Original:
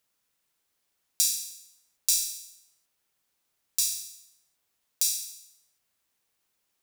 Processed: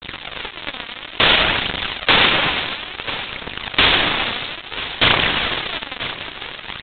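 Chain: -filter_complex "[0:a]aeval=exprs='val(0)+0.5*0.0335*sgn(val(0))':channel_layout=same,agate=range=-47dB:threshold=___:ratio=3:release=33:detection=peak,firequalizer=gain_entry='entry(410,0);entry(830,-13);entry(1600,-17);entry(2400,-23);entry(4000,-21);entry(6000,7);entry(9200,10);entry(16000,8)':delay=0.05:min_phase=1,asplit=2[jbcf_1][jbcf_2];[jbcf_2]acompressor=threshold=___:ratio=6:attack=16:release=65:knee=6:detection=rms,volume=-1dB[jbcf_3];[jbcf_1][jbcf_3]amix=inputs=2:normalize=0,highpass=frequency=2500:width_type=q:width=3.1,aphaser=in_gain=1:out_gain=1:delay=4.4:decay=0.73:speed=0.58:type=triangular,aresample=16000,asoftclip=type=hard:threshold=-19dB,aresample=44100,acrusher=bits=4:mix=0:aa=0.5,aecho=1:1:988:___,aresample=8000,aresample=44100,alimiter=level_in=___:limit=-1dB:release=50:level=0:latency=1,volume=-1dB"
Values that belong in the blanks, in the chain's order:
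-32dB, -28dB, 0.133, 27.5dB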